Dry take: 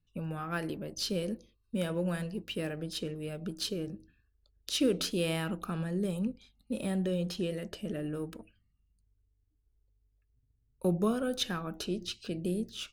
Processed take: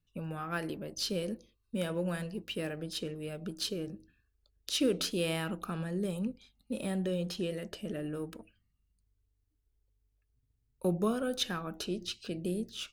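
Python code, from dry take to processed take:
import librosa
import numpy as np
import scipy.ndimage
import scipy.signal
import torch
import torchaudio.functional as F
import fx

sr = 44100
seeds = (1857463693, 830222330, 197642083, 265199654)

y = fx.low_shelf(x, sr, hz=240.0, db=-3.5)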